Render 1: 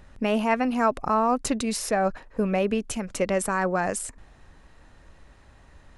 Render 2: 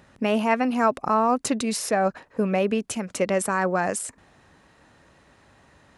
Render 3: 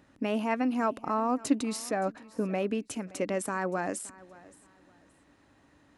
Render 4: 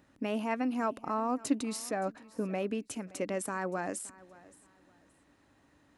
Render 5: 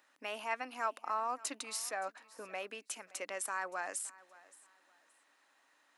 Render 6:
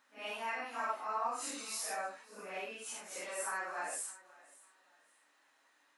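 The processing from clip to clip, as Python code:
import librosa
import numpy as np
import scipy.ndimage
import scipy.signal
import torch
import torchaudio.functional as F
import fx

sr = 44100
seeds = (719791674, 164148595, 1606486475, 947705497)

y1 = scipy.signal.sosfilt(scipy.signal.butter(2, 120.0, 'highpass', fs=sr, output='sos'), x)
y1 = y1 * librosa.db_to_amplitude(1.5)
y2 = fx.peak_eq(y1, sr, hz=290.0, db=12.0, octaves=0.33)
y2 = fx.echo_feedback(y2, sr, ms=571, feedback_pct=26, wet_db=-21.0)
y2 = y2 * librosa.db_to_amplitude(-8.5)
y3 = fx.high_shelf(y2, sr, hz=9700.0, db=4.5)
y3 = y3 * librosa.db_to_amplitude(-3.5)
y4 = scipy.signal.sosfilt(scipy.signal.butter(2, 920.0, 'highpass', fs=sr, output='sos'), y3)
y4 = y4 * librosa.db_to_amplitude(1.0)
y5 = fx.phase_scramble(y4, sr, seeds[0], window_ms=200)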